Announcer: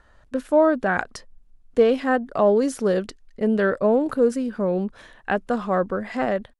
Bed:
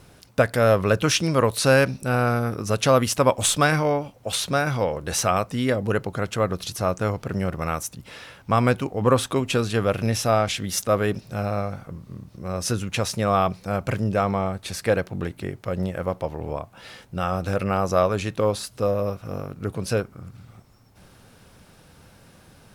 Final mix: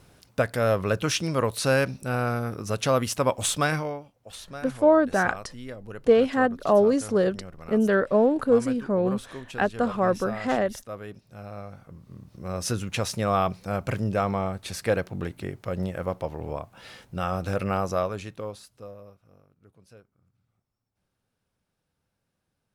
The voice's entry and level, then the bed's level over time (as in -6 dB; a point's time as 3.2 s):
4.30 s, -1.0 dB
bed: 3.74 s -5 dB
4.09 s -16.5 dB
11.25 s -16.5 dB
12.46 s -3 dB
17.76 s -3 dB
19.48 s -28.5 dB